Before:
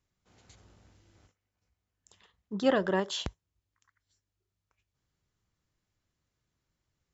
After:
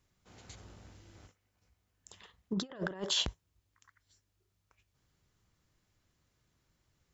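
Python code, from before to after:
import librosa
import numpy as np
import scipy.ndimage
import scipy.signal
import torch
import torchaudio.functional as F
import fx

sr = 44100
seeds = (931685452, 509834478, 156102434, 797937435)

y = fx.over_compress(x, sr, threshold_db=-35.0, ratio=-0.5)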